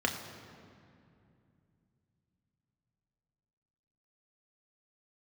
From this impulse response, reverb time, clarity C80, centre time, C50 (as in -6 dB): 2.5 s, 8.0 dB, 40 ms, 7.5 dB